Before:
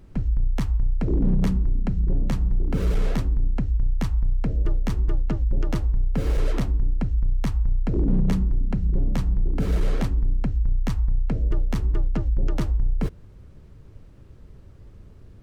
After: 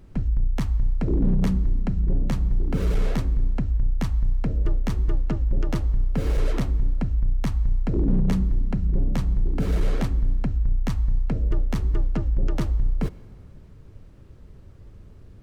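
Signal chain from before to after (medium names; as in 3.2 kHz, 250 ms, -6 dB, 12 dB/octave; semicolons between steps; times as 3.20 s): plate-style reverb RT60 2.3 s, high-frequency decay 0.8×, DRR 17.5 dB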